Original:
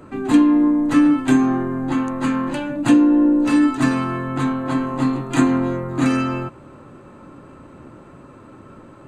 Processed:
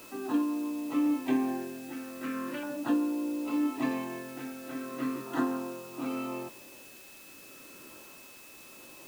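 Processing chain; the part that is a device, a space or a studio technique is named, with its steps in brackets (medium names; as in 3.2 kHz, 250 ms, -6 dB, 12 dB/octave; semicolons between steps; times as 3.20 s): shortwave radio (band-pass 320–2800 Hz; tremolo 0.77 Hz, depth 56%; LFO notch saw down 0.38 Hz 760–2500 Hz; whistle 2.6 kHz -47 dBFS; white noise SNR 19 dB); trim -7.5 dB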